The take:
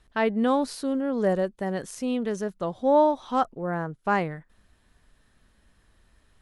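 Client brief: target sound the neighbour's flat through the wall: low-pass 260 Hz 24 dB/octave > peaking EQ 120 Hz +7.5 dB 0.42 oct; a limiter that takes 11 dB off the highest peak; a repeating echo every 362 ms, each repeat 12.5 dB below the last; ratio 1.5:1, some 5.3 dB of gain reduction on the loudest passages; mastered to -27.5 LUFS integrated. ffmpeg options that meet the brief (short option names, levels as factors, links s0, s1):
-af "acompressor=threshold=0.0316:ratio=1.5,alimiter=level_in=1.41:limit=0.0631:level=0:latency=1,volume=0.708,lowpass=f=260:w=0.5412,lowpass=f=260:w=1.3066,equalizer=f=120:t=o:w=0.42:g=7.5,aecho=1:1:362|724|1086:0.237|0.0569|0.0137,volume=4.73"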